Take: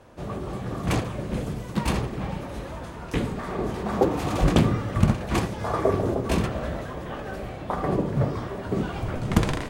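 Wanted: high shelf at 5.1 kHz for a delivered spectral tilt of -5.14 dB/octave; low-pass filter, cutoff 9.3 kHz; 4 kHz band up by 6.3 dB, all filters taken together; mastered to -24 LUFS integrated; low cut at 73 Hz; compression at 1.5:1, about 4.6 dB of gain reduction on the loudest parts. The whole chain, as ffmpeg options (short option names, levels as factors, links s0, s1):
-af "highpass=73,lowpass=9300,equalizer=f=4000:t=o:g=5.5,highshelf=f=5100:g=6.5,acompressor=threshold=0.0447:ratio=1.5,volume=1.88"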